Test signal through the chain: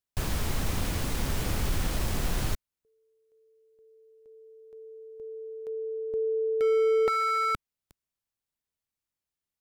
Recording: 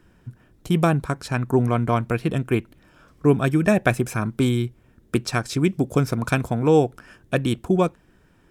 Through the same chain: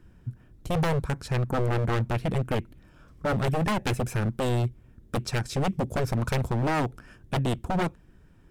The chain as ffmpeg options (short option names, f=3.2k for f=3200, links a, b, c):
-af "lowshelf=f=190:g=11.5,aeval=exprs='0.188*(abs(mod(val(0)/0.188+3,4)-2)-1)':c=same,volume=-5.5dB"